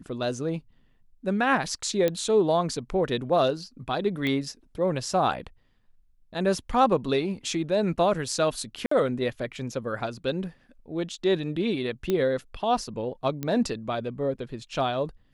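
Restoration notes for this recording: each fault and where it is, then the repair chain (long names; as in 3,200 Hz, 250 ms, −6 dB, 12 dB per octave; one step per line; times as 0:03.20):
0:02.08: click −12 dBFS
0:04.27: click −17 dBFS
0:08.86–0:08.91: drop-out 54 ms
0:12.10: click −13 dBFS
0:13.43: click −17 dBFS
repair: click removal
repair the gap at 0:08.86, 54 ms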